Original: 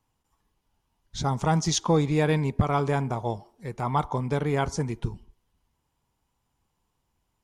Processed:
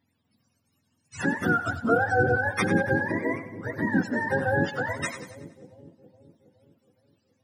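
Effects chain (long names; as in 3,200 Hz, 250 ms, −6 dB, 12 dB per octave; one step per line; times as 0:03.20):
frequency axis turned over on the octave scale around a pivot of 480 Hz
in parallel at −2.5 dB: downward compressor, threshold −32 dBFS, peak gain reduction 13.5 dB
on the sum: echo with a time of its own for lows and highs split 540 Hz, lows 418 ms, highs 94 ms, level −12 dB
pitch vibrato 3 Hz 14 cents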